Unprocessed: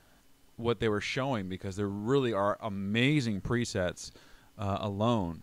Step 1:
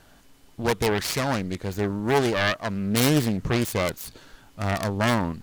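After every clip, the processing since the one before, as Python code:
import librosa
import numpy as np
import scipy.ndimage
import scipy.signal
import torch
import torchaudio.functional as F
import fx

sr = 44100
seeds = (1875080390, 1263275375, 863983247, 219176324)

y = fx.self_delay(x, sr, depth_ms=0.89)
y = y * librosa.db_to_amplitude(7.5)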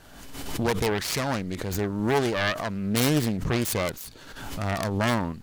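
y = fx.pre_swell(x, sr, db_per_s=44.0)
y = y * librosa.db_to_amplitude(-2.5)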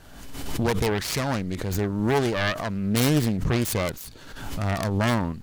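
y = fx.low_shelf(x, sr, hz=180.0, db=5.0)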